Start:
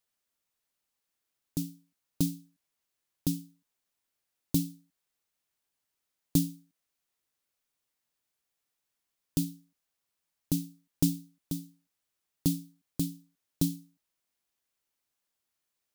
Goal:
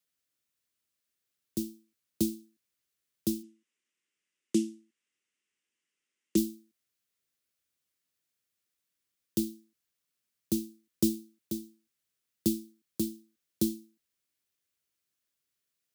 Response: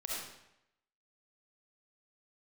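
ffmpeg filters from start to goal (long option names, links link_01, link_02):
-filter_complex "[0:a]equalizer=frequency=790:width=1.6:gain=-9.5,afreqshift=50,asplit=3[link_01][link_02][link_03];[link_01]afade=type=out:start_time=3.42:duration=0.02[link_04];[link_02]highpass=190,equalizer=frequency=230:width_type=q:width=4:gain=3,equalizer=frequency=360:width_type=q:width=4:gain=4,equalizer=frequency=700:width_type=q:width=4:gain=-10,equalizer=frequency=2000:width_type=q:width=4:gain=6,equalizer=frequency=2800:width_type=q:width=4:gain=7,equalizer=frequency=4200:width_type=q:width=4:gain=-8,lowpass=frequency=9000:width=0.5412,lowpass=frequency=9000:width=1.3066,afade=type=in:start_time=3.42:duration=0.02,afade=type=out:start_time=6.36:duration=0.02[link_05];[link_03]afade=type=in:start_time=6.36:duration=0.02[link_06];[link_04][link_05][link_06]amix=inputs=3:normalize=0"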